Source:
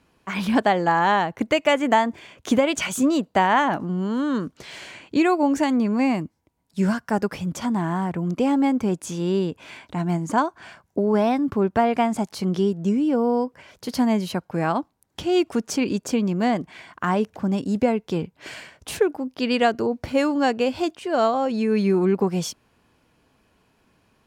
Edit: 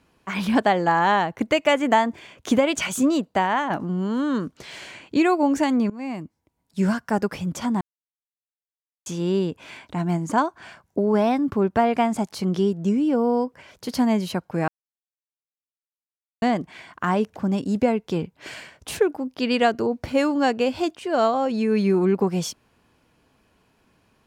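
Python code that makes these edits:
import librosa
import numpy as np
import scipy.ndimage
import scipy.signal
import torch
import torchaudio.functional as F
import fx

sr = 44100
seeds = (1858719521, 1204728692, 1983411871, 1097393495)

y = fx.edit(x, sr, fx.fade_out_to(start_s=3.08, length_s=0.62, floor_db=-6.0),
    fx.fade_in_from(start_s=5.9, length_s=1.07, curve='qsin', floor_db=-20.0),
    fx.silence(start_s=7.81, length_s=1.25),
    fx.silence(start_s=14.68, length_s=1.74), tone=tone)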